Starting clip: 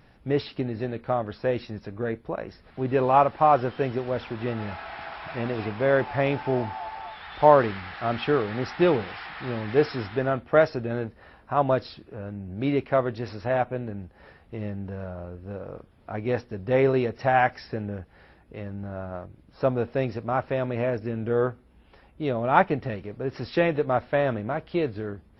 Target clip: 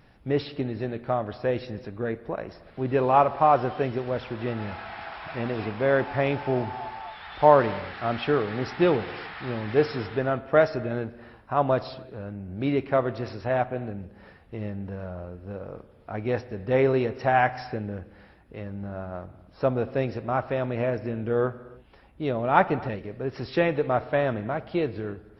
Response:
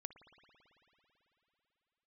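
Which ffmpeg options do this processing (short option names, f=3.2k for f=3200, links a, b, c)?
-filter_complex "[0:a]asplit=2[a][b];[1:a]atrim=start_sample=2205,afade=t=out:st=0.38:d=0.01,atrim=end_sample=17199[c];[b][c]afir=irnorm=-1:irlink=0,volume=7.5dB[d];[a][d]amix=inputs=2:normalize=0,volume=-7.5dB"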